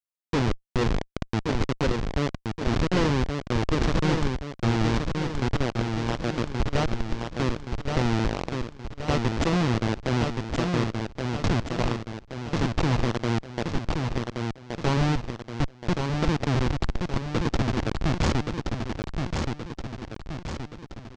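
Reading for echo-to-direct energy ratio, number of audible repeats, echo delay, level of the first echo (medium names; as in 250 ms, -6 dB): -3.0 dB, 6, 1124 ms, -4.5 dB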